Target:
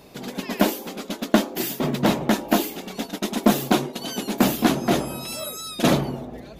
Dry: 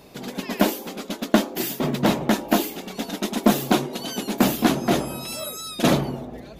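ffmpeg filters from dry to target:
ffmpeg -i in.wav -filter_complex "[0:a]asplit=3[link_01][link_02][link_03];[link_01]afade=type=out:start_time=3.03:duration=0.02[link_04];[link_02]agate=range=-8dB:threshold=-30dB:ratio=16:detection=peak,afade=type=in:start_time=3.03:duration=0.02,afade=type=out:start_time=4:duration=0.02[link_05];[link_03]afade=type=in:start_time=4:duration=0.02[link_06];[link_04][link_05][link_06]amix=inputs=3:normalize=0" out.wav

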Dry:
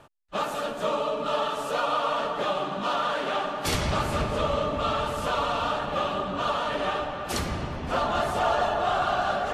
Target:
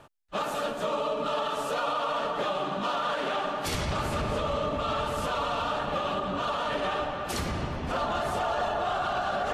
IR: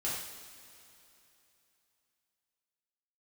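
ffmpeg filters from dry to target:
-af "alimiter=limit=-20.5dB:level=0:latency=1:release=47"

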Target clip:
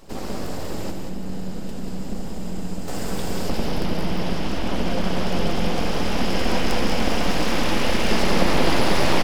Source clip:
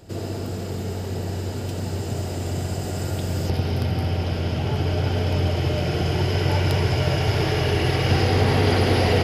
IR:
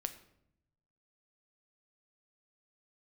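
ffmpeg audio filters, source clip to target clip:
-filter_complex "[0:a]asettb=1/sr,asplit=3[link_01][link_02][link_03];[link_01]atrim=end=0.904[link_04];[link_02]atrim=start=0.9:end=2.88,asetpts=PTS-STARTPTS,afade=type=in:duration=0.004:curve=qsin,afade=type=out:start_time=1.976:duration=0.004:curve=qsin,acrossover=split=170[link_05][link_06];[link_06]acompressor=threshold=-45dB:ratio=2[link_07];[link_05][link_07]amix=inputs=2:normalize=0[link_08];[link_03]atrim=start=2.876[link_09];[link_04][link_08]acrossfade=duration=0.004:curve1=hsin:curve2=qsin[link_10];[link_10][link_09]acrossfade=duration=0.004:curve1=qsin:curve2=hsin,aeval=exprs='abs(val(0))':channel_layout=same,asplit=2[link_11][link_12];[link_12]aecho=0:1:187:0.501[link_13];[link_11][link_13]amix=inputs=2:normalize=0,volume=1.5dB"

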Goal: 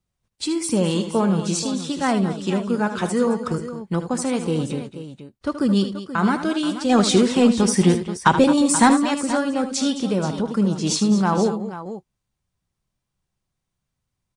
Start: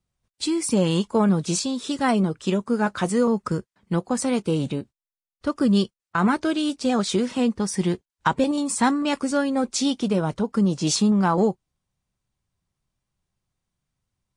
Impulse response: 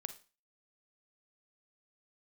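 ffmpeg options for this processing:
-filter_complex "[0:a]asplit=3[link_01][link_02][link_03];[link_01]afade=type=out:start_time=6.89:duration=0.02[link_04];[link_02]acontrast=66,afade=type=in:start_time=6.89:duration=0.02,afade=type=out:start_time=8.99:duration=0.02[link_05];[link_03]afade=type=in:start_time=8.99:duration=0.02[link_06];[link_04][link_05][link_06]amix=inputs=3:normalize=0,aecho=1:1:76|217|480:0.299|0.211|0.237"

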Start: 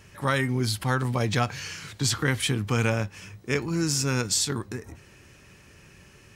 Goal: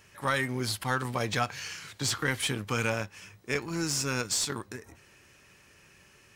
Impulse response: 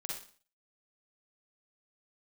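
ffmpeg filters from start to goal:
-filter_complex "[0:a]aemphasis=mode=production:type=75kf,asplit=2[link_01][link_02];[link_02]aeval=exprs='sgn(val(0))*max(abs(val(0))-0.0355,0)':channel_layout=same,volume=-3dB[link_03];[link_01][link_03]amix=inputs=2:normalize=0,asplit=2[link_04][link_05];[link_05]highpass=frequency=720:poles=1,volume=7dB,asoftclip=type=tanh:threshold=-9dB[link_06];[link_04][link_06]amix=inputs=2:normalize=0,lowpass=frequency=1700:poles=1,volume=-6dB,volume=-6dB"

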